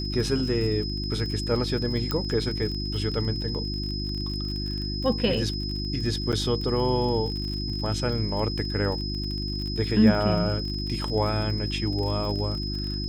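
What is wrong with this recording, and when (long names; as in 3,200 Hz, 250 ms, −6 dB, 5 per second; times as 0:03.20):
surface crackle 37 per second −32 dBFS
mains hum 50 Hz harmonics 7 −31 dBFS
whistle 5,100 Hz −33 dBFS
0:02.11: click −13 dBFS
0:06.32–0:06.33: drop-out 7.7 ms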